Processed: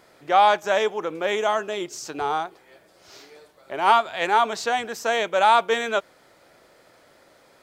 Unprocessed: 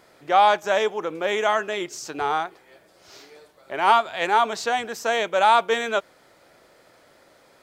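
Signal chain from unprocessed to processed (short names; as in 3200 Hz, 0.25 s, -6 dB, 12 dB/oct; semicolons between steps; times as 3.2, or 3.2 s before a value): 1.35–3.86 dynamic EQ 1900 Hz, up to -6 dB, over -41 dBFS, Q 1.5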